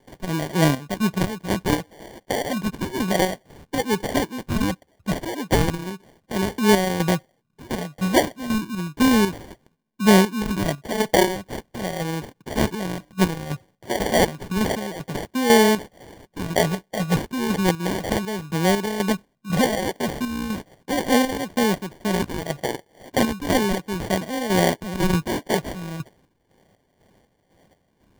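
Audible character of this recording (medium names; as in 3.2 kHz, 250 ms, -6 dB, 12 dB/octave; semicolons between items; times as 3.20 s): phasing stages 12, 0.34 Hz, lowest notch 410–1300 Hz; aliases and images of a low sample rate 1.3 kHz, jitter 0%; chopped level 2 Hz, depth 60%, duty 50%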